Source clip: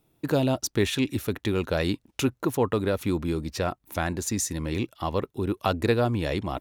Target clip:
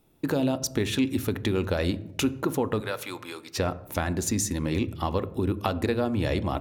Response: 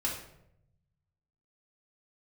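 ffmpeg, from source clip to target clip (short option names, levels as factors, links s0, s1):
-filter_complex "[0:a]asettb=1/sr,asplit=3[s0][s1][s2];[s0]atrim=end=2.804[s3];[s1]atrim=start=2.8:end=3.54,asetpts=PTS-STARTPTS,afade=t=in:d=0.004:c=qsin,afade=t=out:st=0.736:d=0.004:c=qsin,highpass=870[s4];[s2]atrim=start=3.536[s5];[s3][s4]acrossfade=d=0.004:c1=hsin:c2=qsin[s6];[s6][s5]acrossfade=d=0.004:c1=qsin:c2=hsin,acompressor=threshold=0.0501:ratio=6,asplit=2[s7][s8];[1:a]atrim=start_sample=2205,lowshelf=f=380:g=5.5,highshelf=f=2800:g=-10.5[s9];[s8][s9]afir=irnorm=-1:irlink=0,volume=0.188[s10];[s7][s10]amix=inputs=2:normalize=0,volume=1.26"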